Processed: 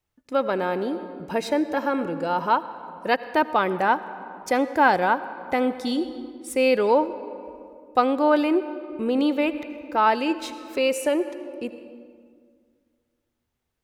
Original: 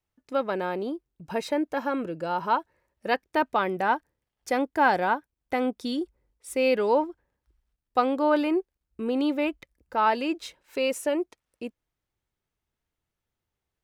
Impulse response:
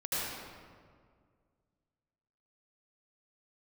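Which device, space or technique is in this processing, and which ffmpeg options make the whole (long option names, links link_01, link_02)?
ducked reverb: -filter_complex "[0:a]asplit=3[link_01][link_02][link_03];[1:a]atrim=start_sample=2205[link_04];[link_02][link_04]afir=irnorm=-1:irlink=0[link_05];[link_03]apad=whole_len=610301[link_06];[link_05][link_06]sidechaincompress=threshold=-24dB:ratio=8:attack=7.8:release=922,volume=-14.5dB[link_07];[link_01][link_07]amix=inputs=2:normalize=0,volume=3dB"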